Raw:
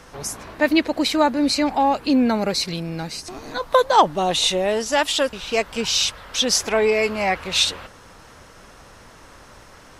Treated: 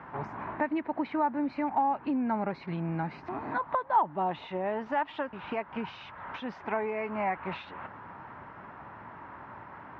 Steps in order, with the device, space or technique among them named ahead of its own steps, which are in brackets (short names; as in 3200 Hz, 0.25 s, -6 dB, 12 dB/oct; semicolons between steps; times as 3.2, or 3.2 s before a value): bass amplifier (compressor 5:1, threshold -28 dBFS, peak gain reduction 17 dB; speaker cabinet 78–2000 Hz, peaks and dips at 81 Hz -7 dB, 490 Hz -9 dB, 920 Hz +8 dB)